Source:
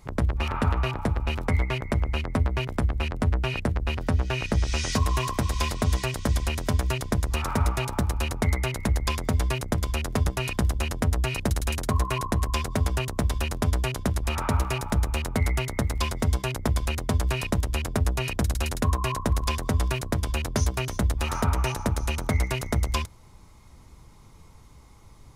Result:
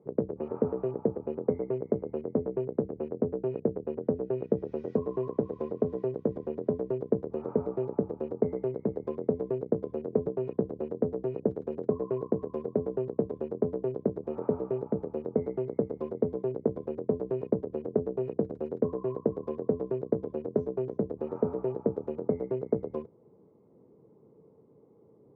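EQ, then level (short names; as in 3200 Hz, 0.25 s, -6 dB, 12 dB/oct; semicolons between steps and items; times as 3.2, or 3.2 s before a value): HPF 150 Hz 24 dB/oct; synth low-pass 450 Hz, resonance Q 4.9; -4.5 dB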